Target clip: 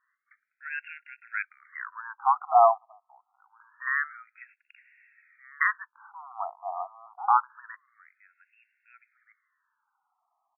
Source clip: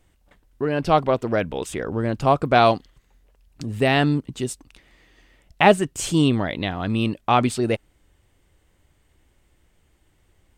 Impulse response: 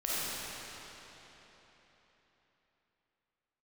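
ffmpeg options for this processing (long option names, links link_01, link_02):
-filter_complex "[0:a]asplit=2[link_01][link_02];[link_02]adelay=1574,volume=-17dB,highshelf=frequency=4000:gain=-35.4[link_03];[link_01][link_03]amix=inputs=2:normalize=0,asettb=1/sr,asplit=3[link_04][link_05][link_06];[link_04]atrim=end=0.824[link_07];[link_05]atrim=start=0.82:end=1.34,asetpts=PTS-STARTPTS,afade=type=in:duration=0.004:curve=qsin,afade=type=out:start_time=0.516:duration=0.004:curve=qsin,acompressor=threshold=-19dB:ratio=10[link_08];[link_06]atrim=start=1.336[link_09];[link_07][link_08]acrossfade=duration=0.004:curve1=hsin:curve2=qsin[link_10];[link_10][link_09]acrossfade=duration=0.004:curve1=qsin:curve2=hsin,afftfilt=real='re*between(b*sr/1024,910*pow(2000/910,0.5+0.5*sin(2*PI*0.26*pts/sr))/1.41,910*pow(2000/910,0.5+0.5*sin(2*PI*0.26*pts/sr))*1.41)':imag='im*between(b*sr/1024,910*pow(2000/910,0.5+0.5*sin(2*PI*0.26*pts/sr))/1.41,910*pow(2000/910,0.5+0.5*sin(2*PI*0.26*pts/sr))*1.41)':win_size=1024:overlap=0.75"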